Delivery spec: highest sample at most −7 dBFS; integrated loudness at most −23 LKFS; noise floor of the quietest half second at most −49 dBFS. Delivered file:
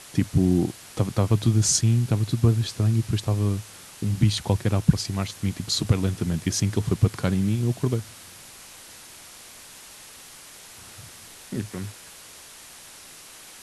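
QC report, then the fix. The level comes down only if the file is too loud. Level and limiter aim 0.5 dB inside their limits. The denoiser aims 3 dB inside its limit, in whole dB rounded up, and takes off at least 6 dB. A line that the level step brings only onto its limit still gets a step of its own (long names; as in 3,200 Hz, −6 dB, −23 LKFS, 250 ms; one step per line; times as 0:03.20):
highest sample −4.0 dBFS: out of spec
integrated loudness −24.0 LKFS: in spec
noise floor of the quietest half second −45 dBFS: out of spec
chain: broadband denoise 7 dB, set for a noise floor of −45 dBFS
brickwall limiter −7.5 dBFS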